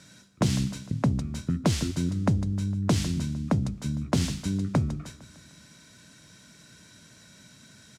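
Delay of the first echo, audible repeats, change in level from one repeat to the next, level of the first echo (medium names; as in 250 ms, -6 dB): 152 ms, 4, -5.0 dB, -17.0 dB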